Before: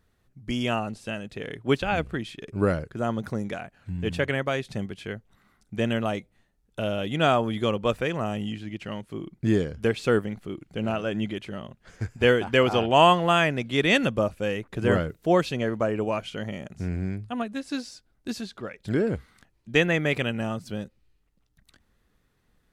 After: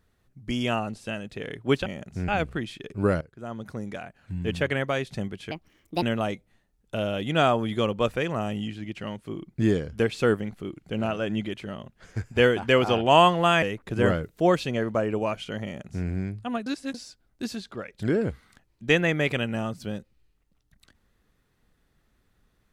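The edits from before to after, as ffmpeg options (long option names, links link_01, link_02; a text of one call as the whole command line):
ffmpeg -i in.wav -filter_complex "[0:a]asplit=9[link_01][link_02][link_03][link_04][link_05][link_06][link_07][link_08][link_09];[link_01]atrim=end=1.862[link_10];[link_02]atrim=start=16.498:end=16.922[link_11];[link_03]atrim=start=1.858:end=2.79,asetpts=PTS-STARTPTS,afade=type=out:start_time=0.928:duration=0.004:curve=hsin:silence=0.149624[link_12];[link_04]atrim=start=2.79:end=5.094,asetpts=PTS-STARTPTS,afade=type=in:duration=1.14:silence=0.149624[link_13];[link_05]atrim=start=5.09:end=5.87,asetpts=PTS-STARTPTS,asetrate=67032,aresample=44100,atrim=end_sample=22630,asetpts=PTS-STARTPTS[link_14];[link_06]atrim=start=5.866:end=13.472[link_15];[link_07]atrim=start=14.478:end=17.522[link_16];[link_08]atrim=start=17.518:end=17.802,asetpts=PTS-STARTPTS,areverse[link_17];[link_09]atrim=start=17.798[link_18];[link_10][link_11]acrossfade=duration=0.004:curve1=hsin:curve2=hsin[link_19];[link_12][link_13]concat=n=2:v=0:a=1[link_20];[link_19][link_20]acrossfade=duration=0.004:curve1=hsin:curve2=hsin[link_21];[link_21][link_14]acrossfade=duration=0.004:curve1=hsin:curve2=hsin[link_22];[link_22][link_15]acrossfade=duration=0.004:curve1=hsin:curve2=hsin[link_23];[link_23][link_16]acrossfade=duration=0.004:curve1=hsin:curve2=hsin[link_24];[link_24][link_17]acrossfade=duration=0.004:curve1=hsin:curve2=hsin[link_25];[link_25][link_18]acrossfade=duration=0.004:curve1=hsin:curve2=hsin" out.wav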